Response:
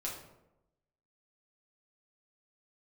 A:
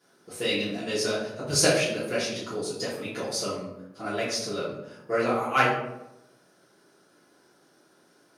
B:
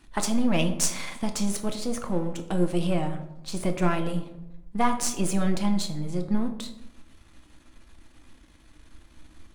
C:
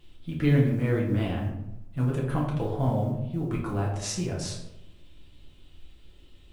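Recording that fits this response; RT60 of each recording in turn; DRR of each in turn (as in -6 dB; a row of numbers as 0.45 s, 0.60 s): C; 0.90 s, 0.90 s, 0.90 s; -10.5 dB, 5.5 dB, -4.0 dB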